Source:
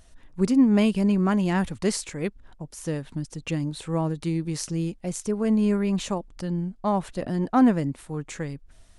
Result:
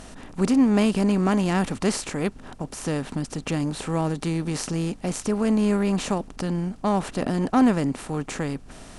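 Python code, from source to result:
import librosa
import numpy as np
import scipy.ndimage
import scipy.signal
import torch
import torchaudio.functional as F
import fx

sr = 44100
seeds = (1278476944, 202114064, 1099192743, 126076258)

y = fx.bin_compress(x, sr, power=0.6)
y = fx.add_hum(y, sr, base_hz=50, snr_db=28)
y = F.gain(torch.from_numpy(y), -1.5).numpy()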